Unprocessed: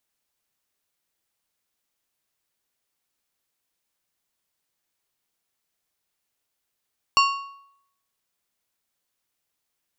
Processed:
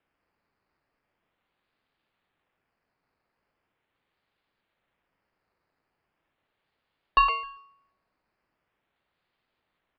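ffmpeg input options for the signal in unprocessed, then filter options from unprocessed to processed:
-f lavfi -i "aevalsrc='0.211*pow(10,-3*t/0.73)*sin(2*PI*1110*t)+0.133*pow(10,-3*t/0.555)*sin(2*PI*2775*t)+0.0841*pow(10,-3*t/0.482)*sin(2*PI*4440*t)+0.0531*pow(10,-3*t/0.45)*sin(2*PI*5550*t)+0.0335*pow(10,-3*t/0.416)*sin(2*PI*7215*t)':d=1.55:s=44100"
-filter_complex "[0:a]acrossover=split=490|2700[s0][s1][s2];[s1]aecho=1:1:114:0.708[s3];[s2]acrusher=samples=10:mix=1:aa=0.000001:lfo=1:lforange=6:lforate=0.4[s4];[s0][s3][s4]amix=inputs=3:normalize=0,aresample=11025,aresample=44100"

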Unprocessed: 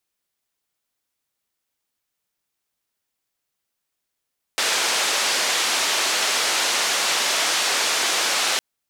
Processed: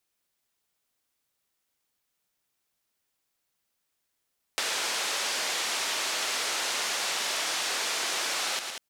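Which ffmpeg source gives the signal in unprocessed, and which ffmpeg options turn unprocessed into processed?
-f lavfi -i "anoisesrc=c=white:d=4.01:r=44100:seed=1,highpass=f=440,lowpass=f=6100,volume=-11dB"
-filter_complex "[0:a]asplit=2[s0][s1];[s1]aecho=0:1:113|189:0.335|0.224[s2];[s0][s2]amix=inputs=2:normalize=0,acompressor=threshold=0.0251:ratio=2.5"

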